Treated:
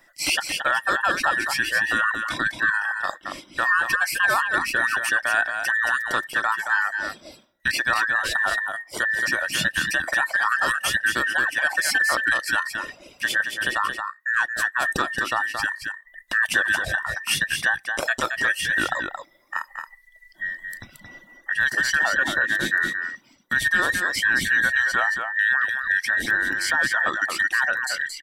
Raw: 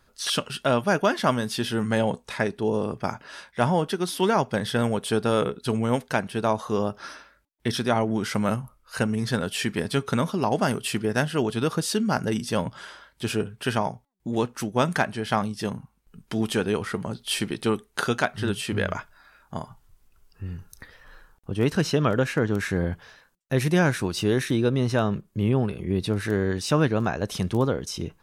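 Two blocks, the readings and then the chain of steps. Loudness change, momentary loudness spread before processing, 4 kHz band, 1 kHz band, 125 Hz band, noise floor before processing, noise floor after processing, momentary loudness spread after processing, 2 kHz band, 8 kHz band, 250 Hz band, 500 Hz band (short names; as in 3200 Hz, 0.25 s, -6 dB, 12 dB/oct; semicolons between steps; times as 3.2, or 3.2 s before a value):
+3.5 dB, 10 LU, +3.5 dB, +2.5 dB, -17.0 dB, -64 dBFS, -56 dBFS, 10 LU, +14.0 dB, +4.5 dB, -13.5 dB, -10.0 dB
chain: band inversion scrambler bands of 2000 Hz; reverb removal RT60 1.2 s; bell 430 Hz -10 dB 0.33 oct; limiter -15.5 dBFS, peak gain reduction 8.5 dB; on a send: echo 0.224 s -6 dB; on the sum: gain +4.5 dB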